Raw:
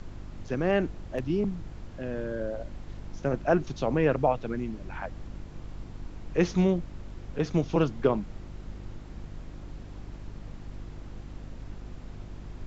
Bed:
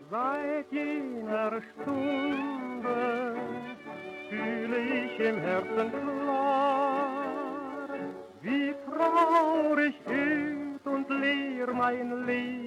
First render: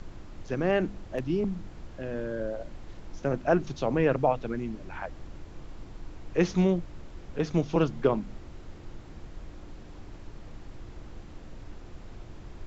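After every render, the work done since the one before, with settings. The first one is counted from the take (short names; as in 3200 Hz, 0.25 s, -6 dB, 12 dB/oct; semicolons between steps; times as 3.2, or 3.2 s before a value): de-hum 50 Hz, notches 5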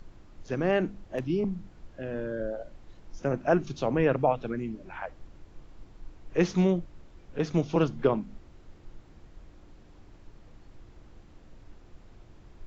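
noise print and reduce 8 dB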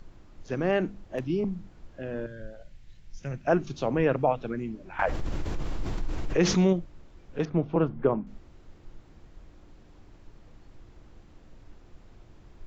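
2.26–3.47 band shelf 560 Hz -12.5 dB 2.9 oct; 4.99–6.73 fast leveller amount 70%; 7.45–8.27 LPF 1600 Hz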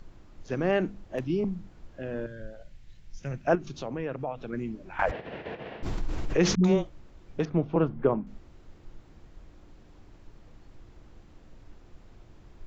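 3.55–4.53 compressor 2:1, threshold -36 dBFS; 5.11–5.83 speaker cabinet 220–3300 Hz, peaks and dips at 310 Hz -8 dB, 460 Hz +7 dB, 670 Hz +6 dB, 1200 Hz -6 dB, 1800 Hz +7 dB, 2700 Hz +5 dB; 6.55–7.39 dispersion highs, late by 92 ms, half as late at 370 Hz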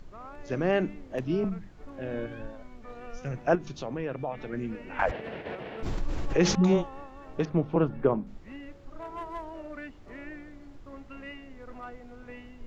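add bed -15.5 dB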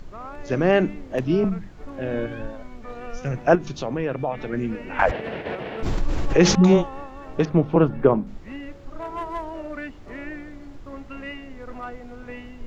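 gain +7.5 dB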